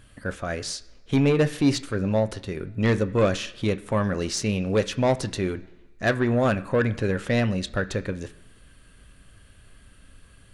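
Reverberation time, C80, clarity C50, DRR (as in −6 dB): 1.2 s, 19.5 dB, 17.0 dB, 10.5 dB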